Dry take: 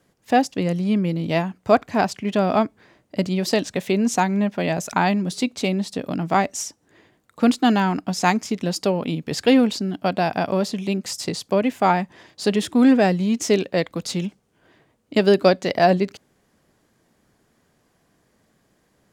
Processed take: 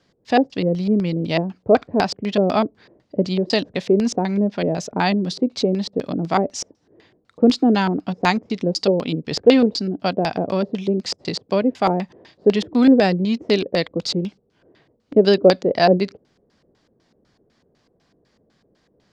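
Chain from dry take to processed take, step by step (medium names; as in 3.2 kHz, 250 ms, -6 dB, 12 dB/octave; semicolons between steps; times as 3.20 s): LFO low-pass square 4 Hz 470–4700 Hz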